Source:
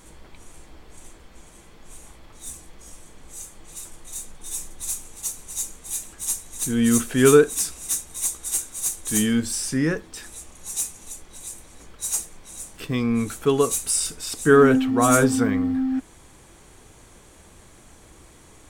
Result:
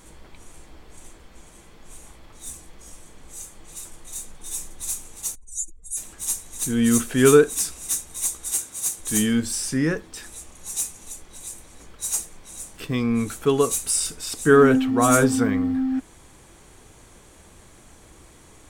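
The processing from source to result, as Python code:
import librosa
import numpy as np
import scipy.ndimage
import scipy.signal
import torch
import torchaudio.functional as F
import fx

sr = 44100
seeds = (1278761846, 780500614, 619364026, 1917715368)

y = fx.spec_expand(x, sr, power=2.5, at=(5.34, 5.96), fade=0.02)
y = fx.highpass(y, sr, hz=68.0, slope=12, at=(8.53, 8.99))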